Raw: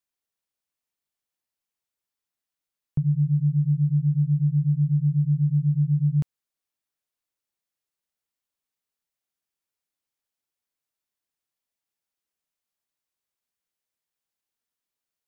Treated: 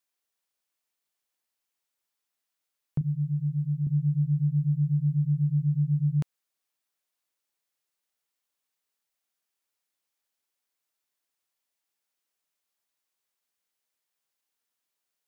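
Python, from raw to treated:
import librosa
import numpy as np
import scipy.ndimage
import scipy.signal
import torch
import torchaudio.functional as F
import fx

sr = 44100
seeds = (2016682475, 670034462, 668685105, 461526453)

y = fx.highpass(x, sr, hz=150.0, slope=6, at=(3.01, 3.87))
y = fx.low_shelf(y, sr, hz=230.0, db=-10.5)
y = y * 10.0 ** (4.0 / 20.0)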